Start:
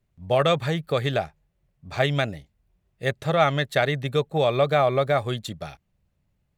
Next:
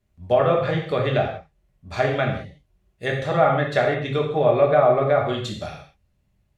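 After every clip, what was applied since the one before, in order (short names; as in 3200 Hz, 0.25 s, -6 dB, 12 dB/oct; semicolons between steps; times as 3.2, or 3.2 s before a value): treble ducked by the level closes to 1400 Hz, closed at -17 dBFS; non-linear reverb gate 0.22 s falling, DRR -1 dB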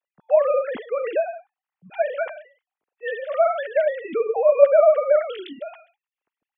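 sine-wave speech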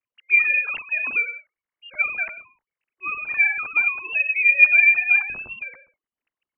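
low shelf 210 Hz +10.5 dB; inverted band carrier 3000 Hz; gain -1.5 dB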